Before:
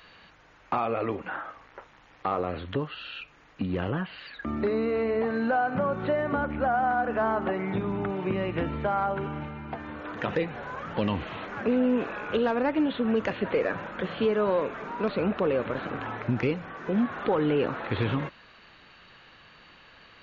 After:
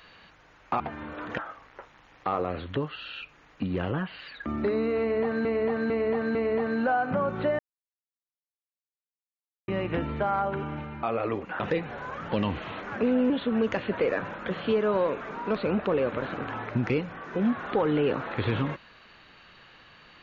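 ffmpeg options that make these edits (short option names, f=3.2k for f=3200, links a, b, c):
-filter_complex "[0:a]asplit=11[a][b][c][d][e][f][g][h][i][j][k];[a]atrim=end=0.802[l];[b]atrim=start=9.668:end=10.252[m];[c]atrim=start=1.368:end=5.442[n];[d]atrim=start=4.988:end=5.442[o];[e]atrim=start=4.988:end=5.442[p];[f]atrim=start=4.988:end=6.23,asetpts=PTS-STARTPTS,afade=t=out:st=1.238:d=0.004:c=hsin[q];[g]atrim=start=6.23:end=8.32,asetpts=PTS-STARTPTS,volume=0[r];[h]atrim=start=8.32:end=9.672,asetpts=PTS-STARTPTS,afade=t=in:d=0.004:c=hsin[s];[i]atrim=start=0.798:end=1.372[t];[j]atrim=start=10.248:end=11.952[u];[k]atrim=start=12.828[v];[l][m]acrossfade=d=0.004:c1=hsin:c2=hsin[w];[w][n]acrossfade=d=0.004:c1=hsin:c2=hsin[x];[x][o]acrossfade=d=0.004:c1=hsin:c2=hsin[y];[y][p]acrossfade=d=0.004:c1=hsin:c2=hsin[z];[q][r][s]concat=n=3:v=0:a=1[aa];[z][aa]acrossfade=d=0.004:c1=hsin:c2=hsin[ab];[ab][t]acrossfade=d=0.004:c1=hsin:c2=hsin[ac];[ac][u]acrossfade=d=0.004:c1=hsin:c2=hsin[ad];[ad][v]acrossfade=d=0.004:c1=hsin:c2=hsin"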